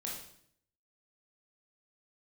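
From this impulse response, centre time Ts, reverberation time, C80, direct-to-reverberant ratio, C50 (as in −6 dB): 44 ms, 0.65 s, 7.0 dB, −3.5 dB, 3.0 dB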